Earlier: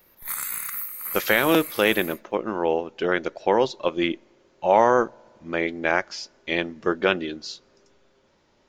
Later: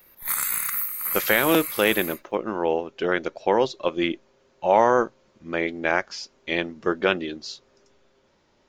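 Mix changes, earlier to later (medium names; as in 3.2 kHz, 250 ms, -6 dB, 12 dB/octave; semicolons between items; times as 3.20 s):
background +4.5 dB; reverb: off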